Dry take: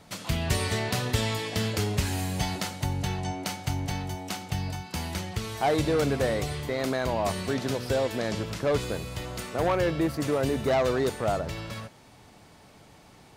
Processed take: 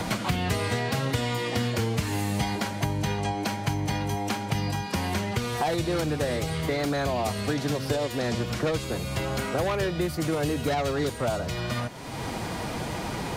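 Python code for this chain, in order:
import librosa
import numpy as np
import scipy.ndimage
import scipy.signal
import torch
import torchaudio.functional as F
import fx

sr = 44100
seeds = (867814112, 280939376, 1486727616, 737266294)

y = fx.pitch_keep_formants(x, sr, semitones=1.5)
y = fx.band_squash(y, sr, depth_pct=100)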